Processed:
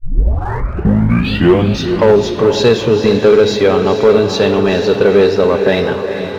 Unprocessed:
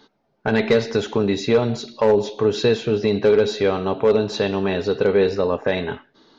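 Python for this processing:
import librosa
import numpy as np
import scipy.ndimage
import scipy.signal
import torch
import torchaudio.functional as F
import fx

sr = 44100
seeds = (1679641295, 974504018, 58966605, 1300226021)

y = fx.tape_start_head(x, sr, length_s=1.94)
y = fx.echo_diffused(y, sr, ms=457, feedback_pct=52, wet_db=-8.5)
y = fx.leveller(y, sr, passes=1)
y = F.gain(torch.from_numpy(y), 5.0).numpy()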